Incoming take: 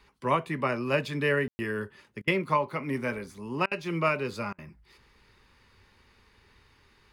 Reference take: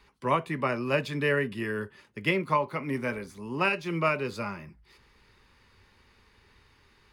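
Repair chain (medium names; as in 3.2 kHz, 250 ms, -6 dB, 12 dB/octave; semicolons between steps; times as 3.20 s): room tone fill 1.48–1.59 s; interpolate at 2.22/3.66/4.53 s, 53 ms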